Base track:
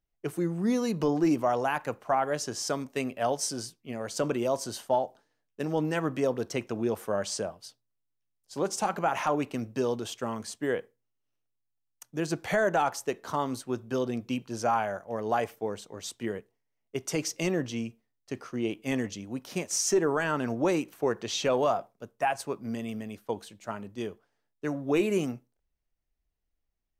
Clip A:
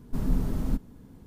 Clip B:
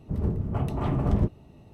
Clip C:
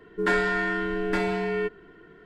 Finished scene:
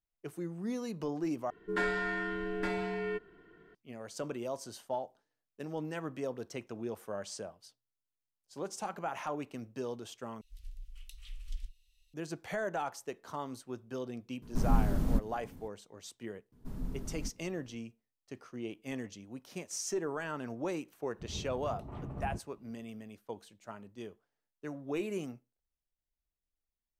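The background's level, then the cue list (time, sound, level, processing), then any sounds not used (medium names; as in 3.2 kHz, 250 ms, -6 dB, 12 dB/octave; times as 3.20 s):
base track -10 dB
1.50 s: replace with C -8.5 dB
10.41 s: replace with B -1.5 dB + inverse Chebyshev band-stop 150–680 Hz, stop band 80 dB
14.42 s: add A -1.5 dB
16.52 s: add A -13 dB + vibrato 2.8 Hz 12 cents
21.11 s: add B -16.5 dB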